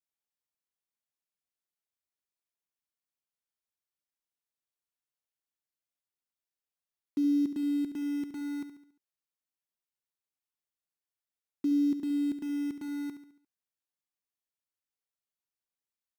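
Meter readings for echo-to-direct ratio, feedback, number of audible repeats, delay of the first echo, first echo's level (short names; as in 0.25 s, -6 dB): -9.5 dB, 47%, 4, 70 ms, -10.5 dB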